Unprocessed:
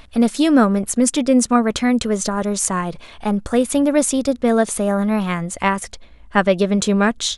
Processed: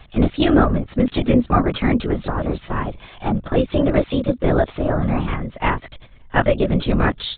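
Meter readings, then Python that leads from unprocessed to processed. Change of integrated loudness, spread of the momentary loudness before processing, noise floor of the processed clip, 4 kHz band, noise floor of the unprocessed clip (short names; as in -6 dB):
-2.0 dB, 8 LU, -46 dBFS, -3.5 dB, -45 dBFS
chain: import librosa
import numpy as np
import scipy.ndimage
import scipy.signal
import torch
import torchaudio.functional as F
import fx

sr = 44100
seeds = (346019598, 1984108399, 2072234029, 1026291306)

y = fx.lpc_vocoder(x, sr, seeds[0], excitation='whisper', order=16)
y = F.gain(torch.from_numpy(y), -1.0).numpy()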